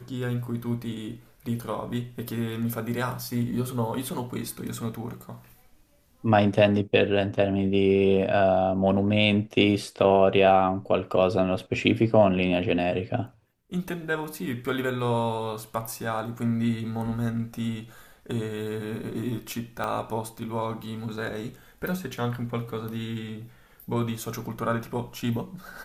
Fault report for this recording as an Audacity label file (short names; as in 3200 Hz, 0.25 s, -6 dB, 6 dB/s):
19.840000	19.840000	pop -17 dBFS